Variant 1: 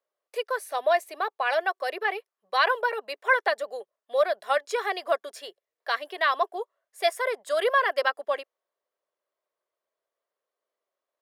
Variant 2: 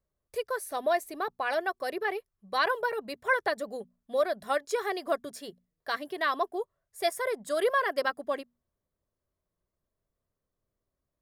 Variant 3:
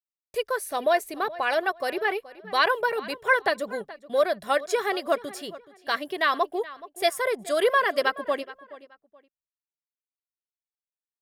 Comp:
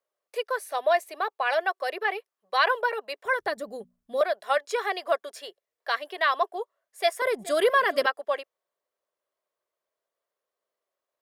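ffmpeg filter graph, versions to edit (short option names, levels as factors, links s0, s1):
-filter_complex "[0:a]asplit=3[s0][s1][s2];[s0]atrim=end=3.252[s3];[1:a]atrim=start=3.248:end=4.212[s4];[s1]atrim=start=4.208:end=7.222[s5];[2:a]atrim=start=7.218:end=8.062[s6];[s2]atrim=start=8.058[s7];[s3][s4]acrossfade=d=0.004:c1=hsin:c2=hsin[s8];[s8][s5]acrossfade=d=0.004:c1=hsin:c2=hsin[s9];[s9][s6]acrossfade=d=0.004:c1=hsin:c2=hsin[s10];[s10][s7]acrossfade=d=0.004:c1=hsin:c2=hsin"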